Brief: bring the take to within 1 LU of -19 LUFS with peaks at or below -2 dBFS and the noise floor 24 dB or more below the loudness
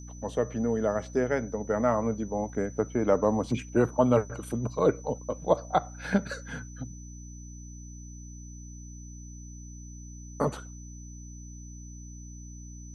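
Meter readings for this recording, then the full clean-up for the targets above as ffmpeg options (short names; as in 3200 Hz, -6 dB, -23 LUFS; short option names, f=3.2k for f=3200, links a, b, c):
hum 60 Hz; harmonics up to 300 Hz; hum level -41 dBFS; steady tone 6000 Hz; tone level -50 dBFS; loudness -28.5 LUFS; peak -9.0 dBFS; loudness target -19.0 LUFS
-> -af "bandreject=f=60:t=h:w=6,bandreject=f=120:t=h:w=6,bandreject=f=180:t=h:w=6,bandreject=f=240:t=h:w=6,bandreject=f=300:t=h:w=6"
-af "bandreject=f=6k:w=30"
-af "volume=9.5dB,alimiter=limit=-2dB:level=0:latency=1"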